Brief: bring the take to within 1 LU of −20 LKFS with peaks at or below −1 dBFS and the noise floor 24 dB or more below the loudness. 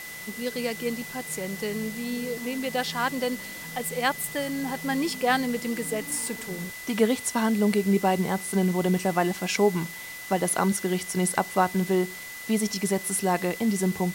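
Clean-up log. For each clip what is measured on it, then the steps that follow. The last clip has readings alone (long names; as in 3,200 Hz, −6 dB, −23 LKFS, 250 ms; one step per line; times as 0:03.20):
interfering tone 2,000 Hz; level of the tone −39 dBFS; background noise floor −39 dBFS; target noise floor −51 dBFS; integrated loudness −26.5 LKFS; sample peak −6.5 dBFS; target loudness −20.0 LKFS
→ notch filter 2,000 Hz, Q 30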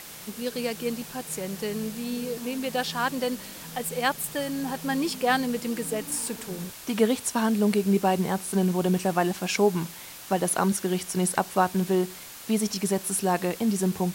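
interfering tone none found; background noise floor −43 dBFS; target noise floor −51 dBFS
→ broadband denoise 8 dB, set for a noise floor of −43 dBFS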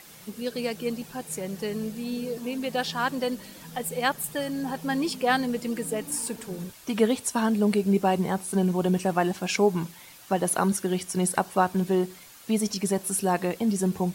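background noise floor −48 dBFS; target noise floor −51 dBFS
→ broadband denoise 6 dB, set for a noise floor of −48 dBFS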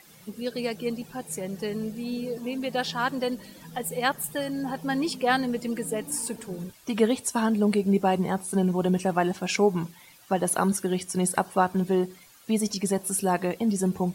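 background noise floor −53 dBFS; integrated loudness −27.0 LKFS; sample peak −7.0 dBFS; target loudness −20.0 LKFS
→ level +7 dB
brickwall limiter −1 dBFS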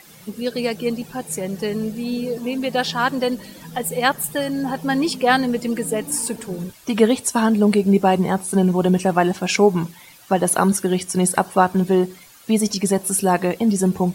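integrated loudness −20.0 LKFS; sample peak −1.0 dBFS; background noise floor −46 dBFS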